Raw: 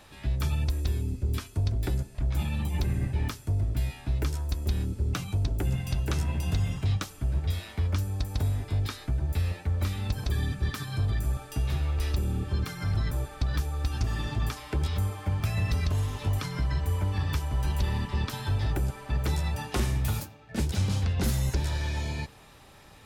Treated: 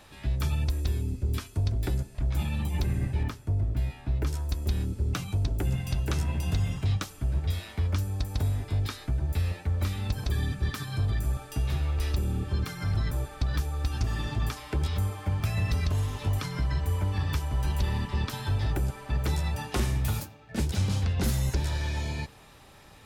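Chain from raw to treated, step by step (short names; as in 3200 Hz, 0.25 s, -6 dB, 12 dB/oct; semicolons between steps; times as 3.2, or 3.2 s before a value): 3.23–4.27 high shelf 3000 Hz -9.5 dB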